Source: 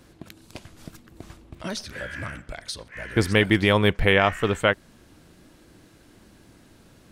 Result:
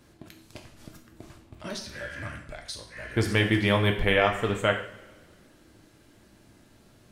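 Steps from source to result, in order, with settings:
coupled-rooms reverb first 0.54 s, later 1.9 s, from −19 dB, DRR 2.5 dB
level −5.5 dB

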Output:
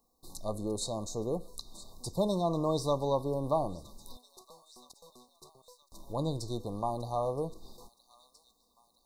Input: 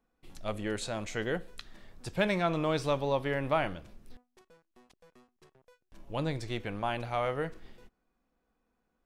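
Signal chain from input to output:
linear-phase brick-wall band-stop 1,200–3,600 Hz
high-shelf EQ 6,700 Hz +7.5 dB
on a send: delay with a high-pass on its return 970 ms, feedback 55%, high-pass 1,800 Hz, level −21 dB
on the sum: one half of a high-frequency compander encoder only

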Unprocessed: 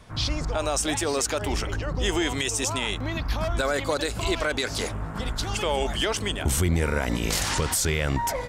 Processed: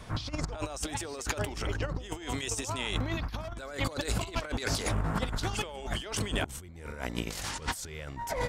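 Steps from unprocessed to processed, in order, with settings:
compressor whose output falls as the input rises −31 dBFS, ratio −0.5
level −2 dB

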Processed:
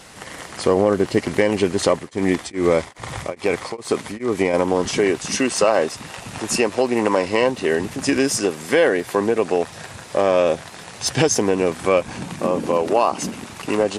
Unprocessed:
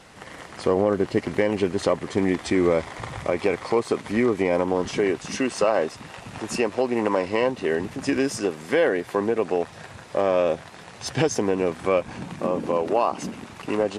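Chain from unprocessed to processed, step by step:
high-shelf EQ 4,800 Hz +10 dB
0:01.90–0:04.54: tremolo along a rectified sine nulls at 2.4 Hz
level +4 dB

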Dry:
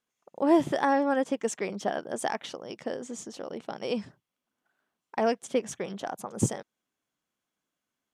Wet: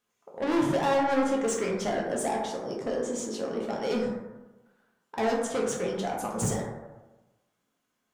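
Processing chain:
0:02.22–0:02.87: parametric band 2,600 Hz −12 dB 1.3 octaves
soft clipping −30 dBFS, distortion −5 dB
dense smooth reverb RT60 1.1 s, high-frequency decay 0.35×, DRR −2.5 dB
level +3 dB

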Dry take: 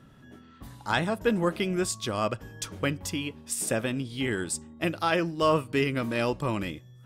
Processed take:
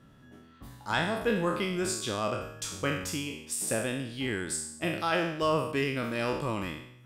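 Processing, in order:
peak hold with a decay on every bin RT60 0.73 s
level −4.5 dB

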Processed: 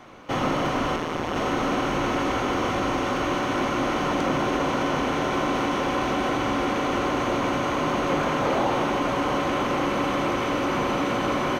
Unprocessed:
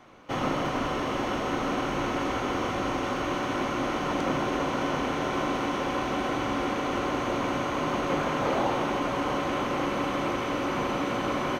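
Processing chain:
0:00.96–0:01.36: amplitude modulation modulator 160 Hz, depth 85%
in parallel at +1 dB: brickwall limiter −26 dBFS, peak gain reduction 11 dB

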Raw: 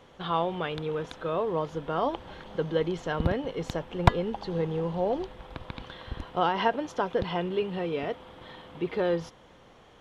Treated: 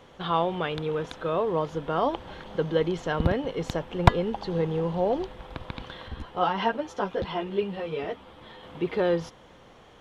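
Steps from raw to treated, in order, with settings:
0:06.08–0:08.63: string-ensemble chorus
level +2.5 dB

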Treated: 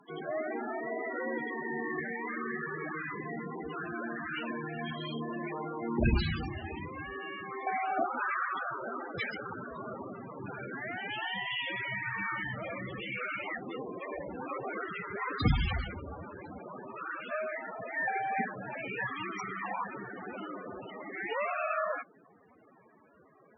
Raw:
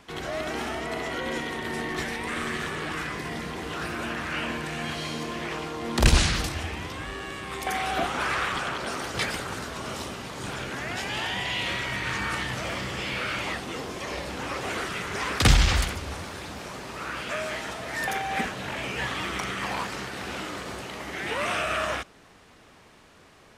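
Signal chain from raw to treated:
high-pass filter 150 Hz 6 dB per octave
0:04.85–0:06.89: double-tracking delay 31 ms −6.5 dB
spectral peaks only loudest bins 16
harmonic generator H 2 −39 dB, 3 −26 dB, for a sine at −6.5 dBFS

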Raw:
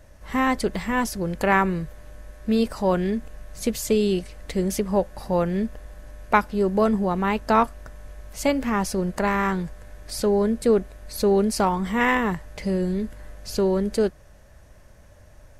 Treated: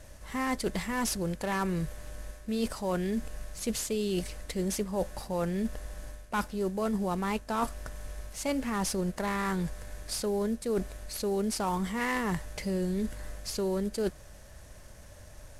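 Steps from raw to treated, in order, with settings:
variable-slope delta modulation 64 kbit/s
high-shelf EQ 4,100 Hz +7 dB
reversed playback
downward compressor 6 to 1, threshold −28 dBFS, peak gain reduction 14 dB
reversed playback

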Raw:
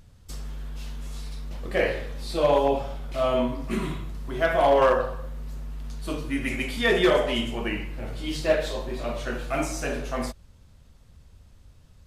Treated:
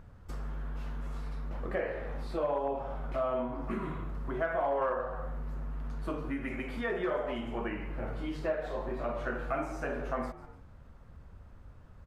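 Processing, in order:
high-shelf EQ 6,600 Hz +9 dB
on a send: echo with shifted repeats 146 ms, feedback 34%, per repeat +110 Hz, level −22 dB
on the sum: downward compressor 5 to 1, threshold −34 dBFS, peak gain reduction 16.5 dB
drawn EQ curve 130 Hz 0 dB, 1,400 Hz +6 dB, 3,600 Hz −13 dB, 9,200 Hz −21 dB

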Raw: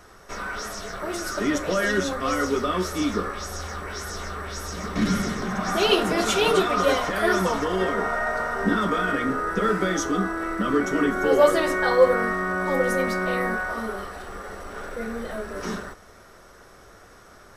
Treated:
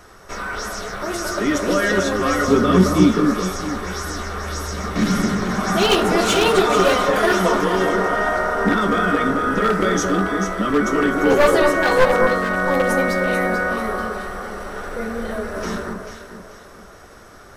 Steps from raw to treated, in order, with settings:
wavefolder on the positive side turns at −15 dBFS
0:02.48–0:03.12: parametric band 170 Hz +14.5 dB 1.4 octaves
delay that swaps between a low-pass and a high-pass 220 ms, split 1,400 Hz, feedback 60%, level −3.5 dB
level +4 dB

